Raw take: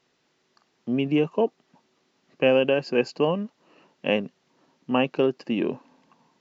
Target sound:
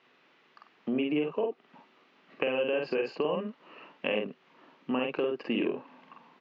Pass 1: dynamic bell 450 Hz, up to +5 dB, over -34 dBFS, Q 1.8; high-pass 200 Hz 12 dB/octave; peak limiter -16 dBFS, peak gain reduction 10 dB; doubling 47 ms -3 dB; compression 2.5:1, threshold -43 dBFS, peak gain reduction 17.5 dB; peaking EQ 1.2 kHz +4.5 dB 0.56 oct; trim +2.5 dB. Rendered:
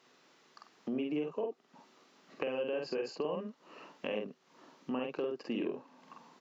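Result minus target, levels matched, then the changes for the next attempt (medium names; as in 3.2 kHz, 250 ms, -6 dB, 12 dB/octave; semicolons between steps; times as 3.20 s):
compression: peak gain reduction +5.5 dB; 2 kHz band -3.5 dB
change: compression 2.5:1, threshold -33.5 dBFS, peak gain reduction 11.5 dB; add after compression: resonant low-pass 2.7 kHz, resonance Q 1.7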